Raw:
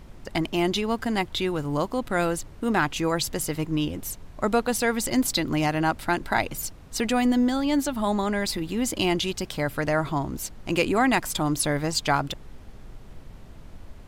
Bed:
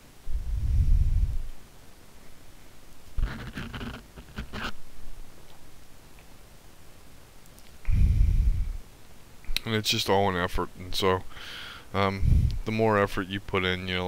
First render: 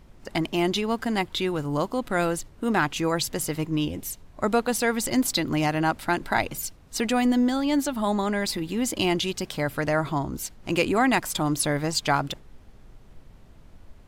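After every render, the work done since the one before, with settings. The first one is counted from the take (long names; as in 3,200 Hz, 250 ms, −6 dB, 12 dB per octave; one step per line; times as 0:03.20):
noise reduction from a noise print 6 dB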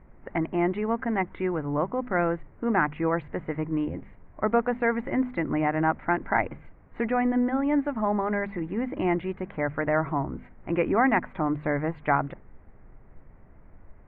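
elliptic low-pass filter 2,100 Hz, stop band 60 dB
mains-hum notches 50/100/150/200/250 Hz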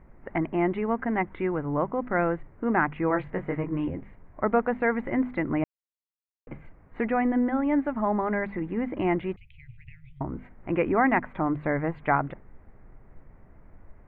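0:03.08–0:03.90: double-tracking delay 21 ms −4 dB
0:05.64–0:06.47: silence
0:09.36–0:10.21: Chebyshev band-stop filter 120–2,500 Hz, order 5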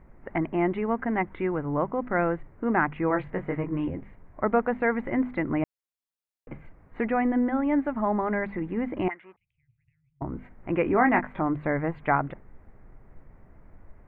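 0:09.08–0:10.22: envelope filter 320–1,900 Hz, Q 3.3, up, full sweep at −22 dBFS
0:10.83–0:11.42: double-tracking delay 20 ms −6.5 dB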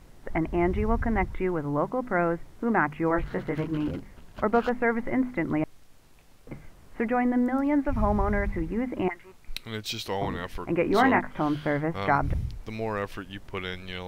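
mix in bed −7.5 dB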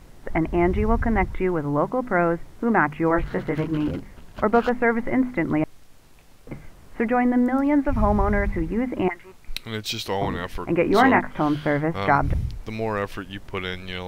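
level +4.5 dB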